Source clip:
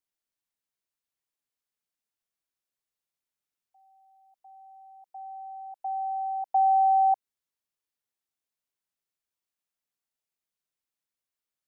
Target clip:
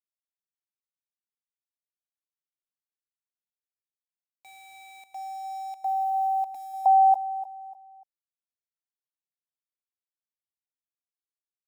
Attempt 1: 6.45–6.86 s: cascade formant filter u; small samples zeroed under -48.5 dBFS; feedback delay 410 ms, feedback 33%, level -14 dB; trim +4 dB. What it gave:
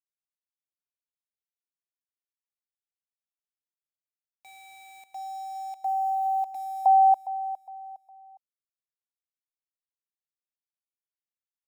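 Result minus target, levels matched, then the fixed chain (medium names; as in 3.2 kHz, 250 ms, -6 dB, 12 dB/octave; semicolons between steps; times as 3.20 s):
echo 113 ms late
6.45–6.86 s: cascade formant filter u; small samples zeroed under -48.5 dBFS; feedback delay 297 ms, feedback 33%, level -14 dB; trim +4 dB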